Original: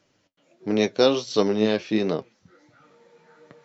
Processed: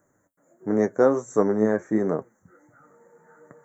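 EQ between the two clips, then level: inverse Chebyshev band-stop 2.5–5.3 kHz, stop band 40 dB; treble shelf 3.4 kHz +11.5 dB; 0.0 dB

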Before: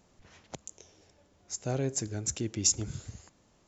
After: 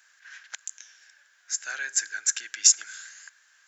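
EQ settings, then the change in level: resonant high-pass 1.6 kHz, resonance Q 14; treble shelf 2.2 kHz +11 dB; -2.0 dB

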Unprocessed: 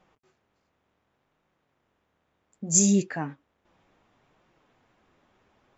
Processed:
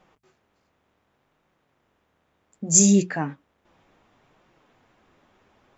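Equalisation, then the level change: hum notches 60/120/180 Hz; +4.5 dB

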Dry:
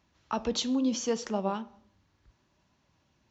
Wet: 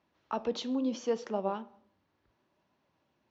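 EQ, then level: high-pass 230 Hz 6 dB/octave; distance through air 140 m; peaking EQ 480 Hz +5 dB 1.9 oct; -4.0 dB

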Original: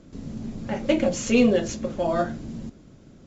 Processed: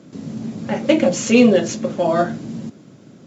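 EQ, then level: high-pass 120 Hz 24 dB/octave; +6.5 dB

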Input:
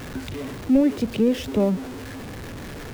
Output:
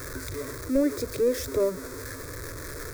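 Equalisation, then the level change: treble shelf 2.8 kHz +8.5 dB; static phaser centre 790 Hz, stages 6; 0.0 dB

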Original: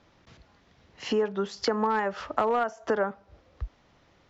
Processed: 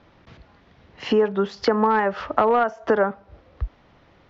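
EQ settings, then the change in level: distance through air 170 m; +7.5 dB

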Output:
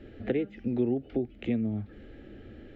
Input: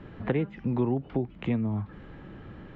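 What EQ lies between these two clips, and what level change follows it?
peaking EQ 210 Hz +10 dB 0.48 oct; static phaser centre 420 Hz, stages 4; 0.0 dB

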